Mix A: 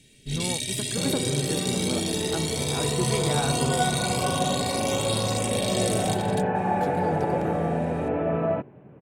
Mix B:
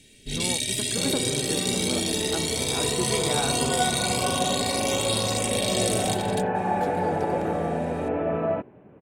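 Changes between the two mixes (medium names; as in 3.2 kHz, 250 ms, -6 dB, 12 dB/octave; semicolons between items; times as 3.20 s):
first sound +3.0 dB; master: add peaking EQ 140 Hz -8 dB 0.5 oct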